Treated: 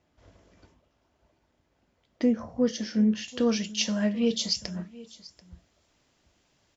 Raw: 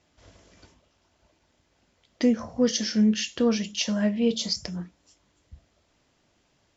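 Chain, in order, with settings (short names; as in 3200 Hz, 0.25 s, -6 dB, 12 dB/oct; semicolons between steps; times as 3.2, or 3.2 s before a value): high shelf 2500 Hz -10 dB, from 3.28 s +3 dB; echo 0.737 s -20 dB; gain -2 dB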